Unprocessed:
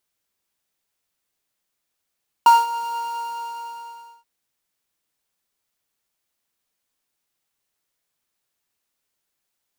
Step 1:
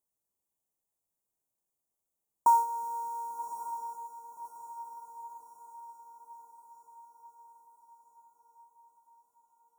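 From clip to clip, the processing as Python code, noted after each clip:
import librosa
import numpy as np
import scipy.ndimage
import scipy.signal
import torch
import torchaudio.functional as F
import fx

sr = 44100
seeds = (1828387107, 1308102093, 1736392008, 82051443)

y = scipy.signal.sosfilt(scipy.signal.cheby2(4, 50, [1800.0, 4000.0], 'bandstop', fs=sr, output='sos'), x)
y = fx.echo_diffused(y, sr, ms=1145, feedback_pct=55, wet_db=-10.0)
y = F.gain(torch.from_numpy(y), -7.5).numpy()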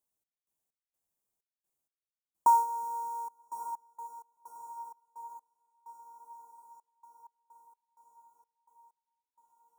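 y = fx.step_gate(x, sr, bpm=64, pattern='x.x.xx.x..xxxx.', floor_db=-24.0, edge_ms=4.5)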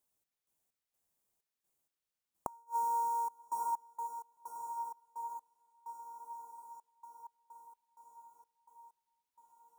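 y = fx.gate_flip(x, sr, shuts_db=-24.0, range_db=-37)
y = F.gain(torch.from_numpy(y), 3.5).numpy()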